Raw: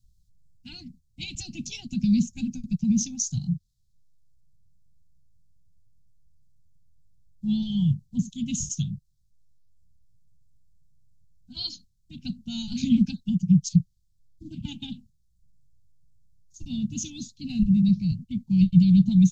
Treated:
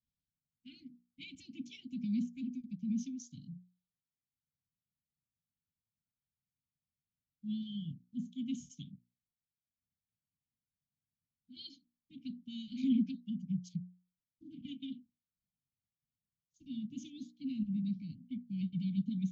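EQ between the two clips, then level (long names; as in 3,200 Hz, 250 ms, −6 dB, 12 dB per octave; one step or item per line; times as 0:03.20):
formant filter i
high-shelf EQ 5,700 Hz +3.5 dB
mains-hum notches 60/120/180/240/300/360 Hz
−1.5 dB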